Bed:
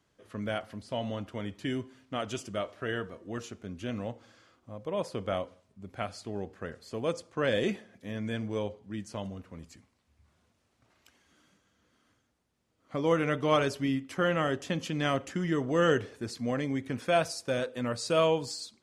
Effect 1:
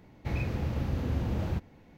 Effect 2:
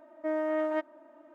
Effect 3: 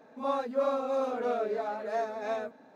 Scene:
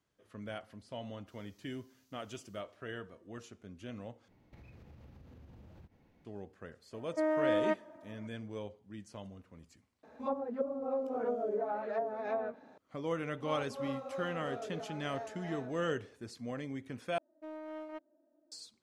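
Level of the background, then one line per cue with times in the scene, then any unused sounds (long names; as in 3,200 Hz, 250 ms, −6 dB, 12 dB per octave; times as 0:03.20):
bed −9.5 dB
0:01.02: mix in 1 −12.5 dB + inverse Chebyshev high-pass filter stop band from 930 Hz, stop band 80 dB
0:04.28: overwrite with 1 −11 dB + downward compressor 16 to 1, threshold −40 dBFS
0:06.93: mix in 2 −0.5 dB
0:10.03: mix in 3 −1.5 dB + treble cut that deepens with the level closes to 340 Hz, closed at −25 dBFS
0:13.22: mix in 3 −12.5 dB + single-tap delay 254 ms −8.5 dB
0:17.18: overwrite with 2 −13 dB + adaptive Wiener filter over 41 samples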